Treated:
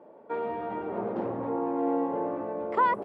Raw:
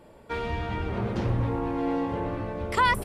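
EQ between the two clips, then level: Butterworth band-pass 430 Hz, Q 0.67; tilt EQ +3 dB/octave; +5.0 dB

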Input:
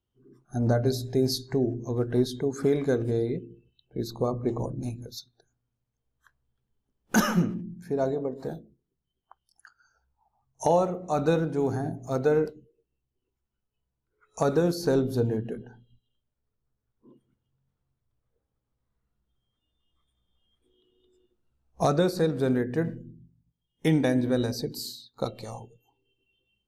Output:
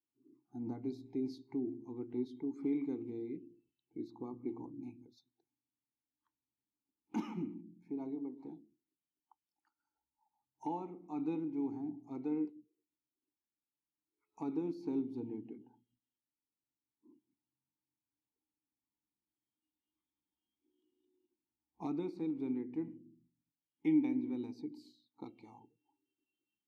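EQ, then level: dynamic bell 850 Hz, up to -4 dB, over -44 dBFS, Q 2.8; vowel filter u; -2.0 dB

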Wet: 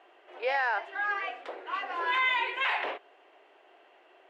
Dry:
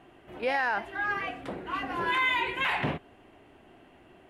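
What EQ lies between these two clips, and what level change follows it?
inverse Chebyshev high-pass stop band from 210 Hz, stop band 40 dB; distance through air 140 m; treble shelf 5.2 kHz +8.5 dB; 0.0 dB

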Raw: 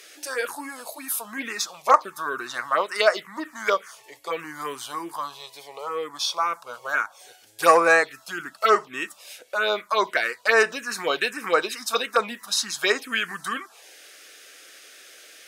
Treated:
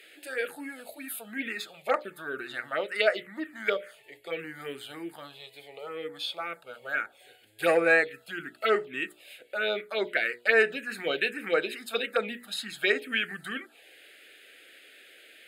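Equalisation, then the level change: treble shelf 5.5 kHz -9.5 dB; hum notches 60/120/180/240/300/360/420/480/540/600 Hz; static phaser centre 2.5 kHz, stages 4; 0.0 dB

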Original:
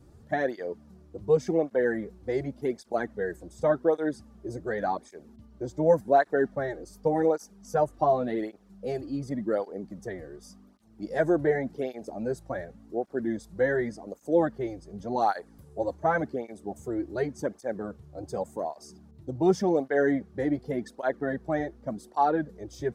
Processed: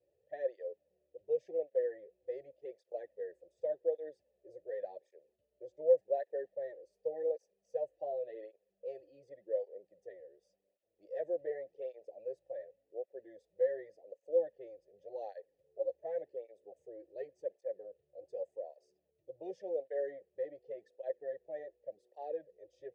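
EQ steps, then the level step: vowel filter e; static phaser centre 580 Hz, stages 4; -3.5 dB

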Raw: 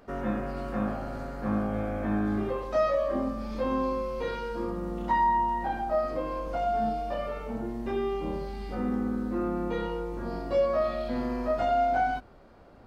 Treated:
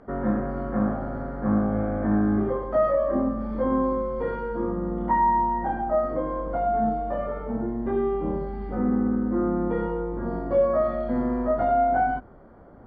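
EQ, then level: Savitzky-Golay filter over 41 samples; distance through air 60 m; peaking EQ 200 Hz +3.5 dB 2.4 oct; +3.0 dB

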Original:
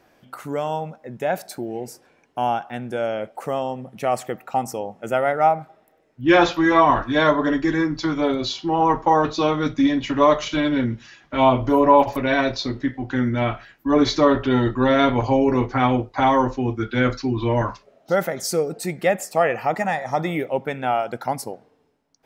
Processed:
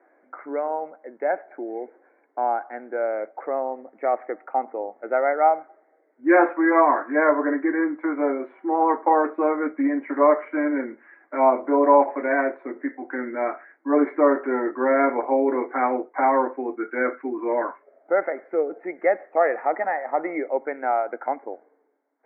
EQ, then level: Chebyshev high-pass 290 Hz, order 4; rippled Chebyshev low-pass 2.2 kHz, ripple 3 dB; 0.0 dB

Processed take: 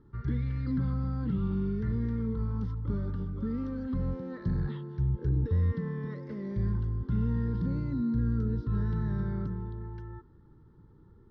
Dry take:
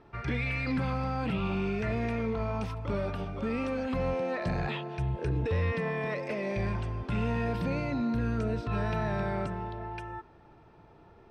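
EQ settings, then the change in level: tilt shelf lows +9 dB, about 690 Hz; static phaser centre 2.5 kHz, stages 6; -5.0 dB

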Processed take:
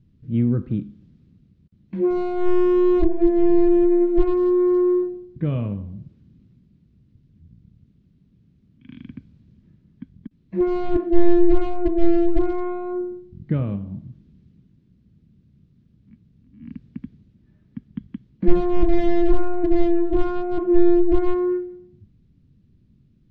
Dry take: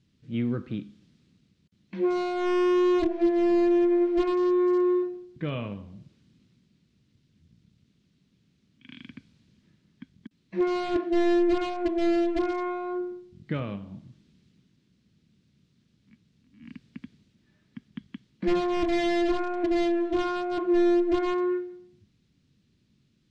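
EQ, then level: tilt EQ -4 dB/octave; -1.0 dB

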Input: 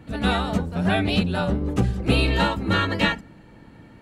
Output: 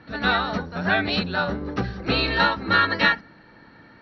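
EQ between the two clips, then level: rippled Chebyshev low-pass 5.8 kHz, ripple 9 dB; bass shelf 160 Hz -9.5 dB; +7.5 dB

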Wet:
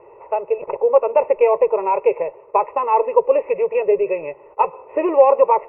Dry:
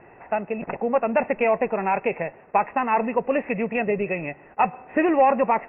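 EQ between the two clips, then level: high-order bell 630 Hz +14 dB; static phaser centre 1.1 kHz, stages 8; -4.0 dB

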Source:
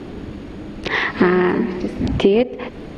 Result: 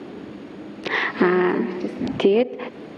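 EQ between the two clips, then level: high-pass 210 Hz 12 dB/octave; treble shelf 5 kHz -5.5 dB; -2.0 dB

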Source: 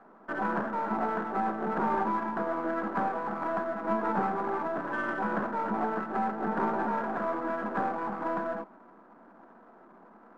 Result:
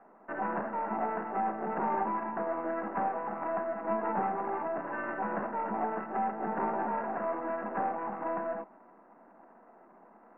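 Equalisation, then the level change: rippled Chebyshev low-pass 2.8 kHz, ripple 6 dB; 0.0 dB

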